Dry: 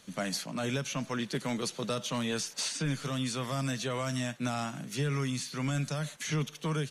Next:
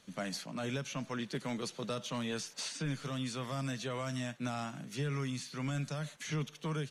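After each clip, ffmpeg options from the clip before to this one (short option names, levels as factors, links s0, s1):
-af "highshelf=f=7500:g=-6.5,volume=0.596"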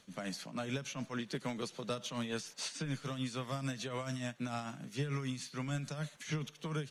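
-af "tremolo=f=6.8:d=0.55,volume=1.12"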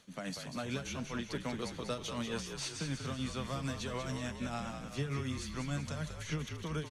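-filter_complex "[0:a]asplit=8[s0][s1][s2][s3][s4][s5][s6][s7];[s1]adelay=190,afreqshift=-47,volume=0.447[s8];[s2]adelay=380,afreqshift=-94,volume=0.245[s9];[s3]adelay=570,afreqshift=-141,volume=0.135[s10];[s4]adelay=760,afreqshift=-188,volume=0.0741[s11];[s5]adelay=950,afreqshift=-235,volume=0.0407[s12];[s6]adelay=1140,afreqshift=-282,volume=0.0224[s13];[s7]adelay=1330,afreqshift=-329,volume=0.0123[s14];[s0][s8][s9][s10][s11][s12][s13][s14]amix=inputs=8:normalize=0"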